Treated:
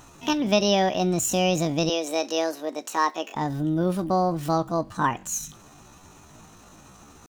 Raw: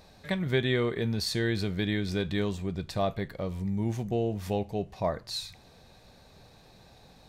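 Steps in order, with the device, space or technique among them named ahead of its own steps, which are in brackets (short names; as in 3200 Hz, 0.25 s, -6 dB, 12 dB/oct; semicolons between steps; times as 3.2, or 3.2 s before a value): 1.9–3.37 HPF 220 Hz 24 dB/oct; chipmunk voice (pitch shift +8 st); gain +6 dB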